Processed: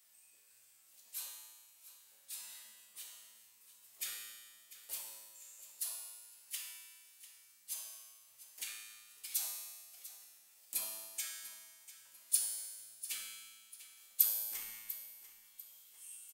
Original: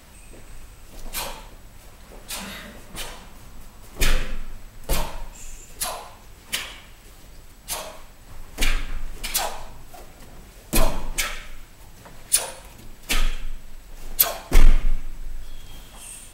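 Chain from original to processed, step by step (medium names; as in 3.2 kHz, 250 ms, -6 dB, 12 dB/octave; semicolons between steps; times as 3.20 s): differentiator; feedback comb 110 Hz, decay 1.5 s, harmonics all, mix 90%; on a send: feedback delay 695 ms, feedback 36%, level -15 dB; on the sum: trim +3 dB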